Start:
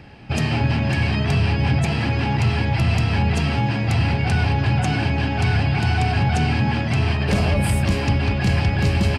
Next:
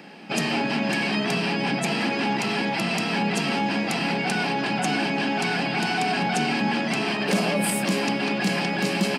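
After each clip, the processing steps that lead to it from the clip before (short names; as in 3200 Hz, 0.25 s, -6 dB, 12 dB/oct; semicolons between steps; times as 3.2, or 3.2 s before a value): elliptic high-pass 180 Hz, stop band 50 dB; high shelf 6000 Hz +8 dB; in parallel at -2.5 dB: limiter -21 dBFS, peak gain reduction 11 dB; on the sum: gain -2.5 dB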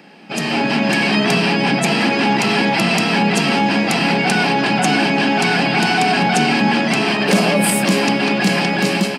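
AGC gain up to 10 dB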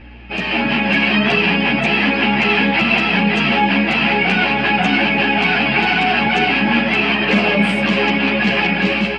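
synth low-pass 2700 Hz, resonance Q 2.1; hum 60 Hz, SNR 22 dB; ensemble effect; gain +1 dB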